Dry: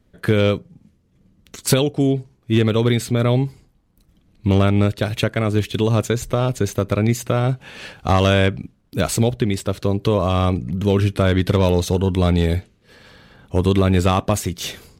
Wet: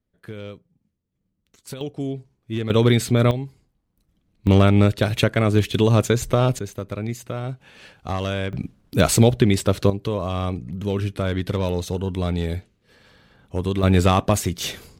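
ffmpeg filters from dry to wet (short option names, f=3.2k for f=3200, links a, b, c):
-af "asetnsamples=n=441:p=0,asendcmd='1.81 volume volume -10dB;2.7 volume volume 1dB;3.31 volume volume -10dB;4.47 volume volume 1dB;6.59 volume volume -10dB;8.53 volume volume 3dB;9.9 volume volume -7dB;13.83 volume volume 0dB',volume=-19dB"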